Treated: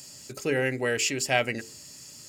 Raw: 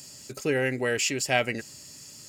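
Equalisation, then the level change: notches 50/100/150/200/250/300/350/400/450 Hz; 0.0 dB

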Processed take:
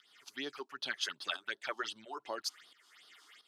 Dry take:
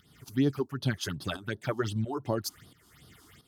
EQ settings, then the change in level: HPF 340 Hz 12 dB/oct; LPF 2900 Hz 12 dB/oct; differentiator; +13.0 dB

